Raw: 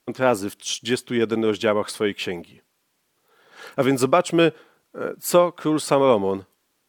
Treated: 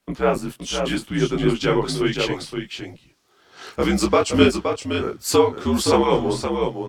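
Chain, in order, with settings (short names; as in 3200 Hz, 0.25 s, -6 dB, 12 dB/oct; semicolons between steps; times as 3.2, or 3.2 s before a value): bell 5400 Hz -2 dB 1.1 oct, from 1.58 s +8.5 dB; echo 0.52 s -6.5 dB; frequency shift -70 Hz; high shelf 10000 Hz -7.5 dB; detuned doubles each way 47 cents; gain +4 dB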